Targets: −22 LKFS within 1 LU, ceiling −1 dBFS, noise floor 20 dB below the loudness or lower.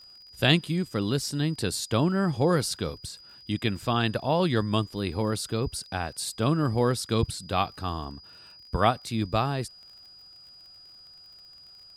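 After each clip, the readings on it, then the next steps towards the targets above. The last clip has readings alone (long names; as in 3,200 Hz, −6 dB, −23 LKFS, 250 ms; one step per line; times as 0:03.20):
crackle rate 42 per second; interfering tone 4,900 Hz; level of the tone −48 dBFS; integrated loudness −27.0 LKFS; sample peak −7.0 dBFS; target loudness −22.0 LKFS
→ click removal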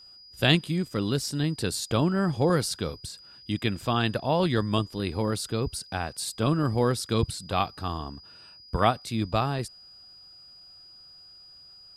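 crackle rate 0 per second; interfering tone 4,900 Hz; level of the tone −48 dBFS
→ notch filter 4,900 Hz, Q 30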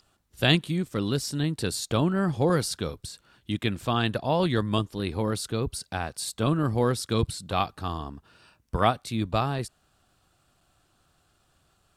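interfering tone none found; integrated loudness −27.5 LKFS; sample peak −7.0 dBFS; target loudness −22.0 LKFS
→ level +5.5 dB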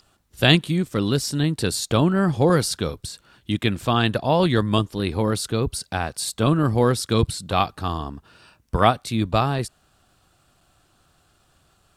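integrated loudness −22.0 LKFS; sample peak −1.5 dBFS; background noise floor −63 dBFS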